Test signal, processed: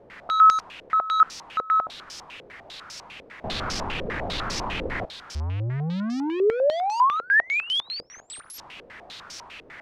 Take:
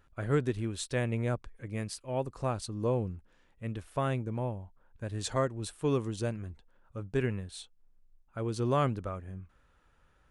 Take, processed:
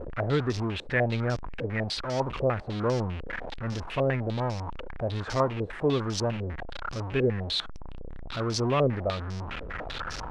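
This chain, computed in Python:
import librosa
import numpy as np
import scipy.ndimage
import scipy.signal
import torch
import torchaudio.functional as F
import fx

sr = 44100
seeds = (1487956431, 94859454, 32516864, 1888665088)

y = x + 0.5 * 10.0 ** (-31.5 / 20.0) * np.sign(x)
y = fx.filter_held_lowpass(y, sr, hz=10.0, low_hz=490.0, high_hz=5400.0)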